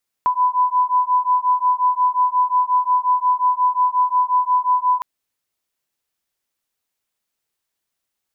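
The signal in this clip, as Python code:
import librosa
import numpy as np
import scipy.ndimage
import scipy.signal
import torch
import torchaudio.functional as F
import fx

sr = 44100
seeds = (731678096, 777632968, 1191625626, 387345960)

y = fx.two_tone_beats(sr, length_s=4.76, hz=996.0, beat_hz=5.6, level_db=-17.5)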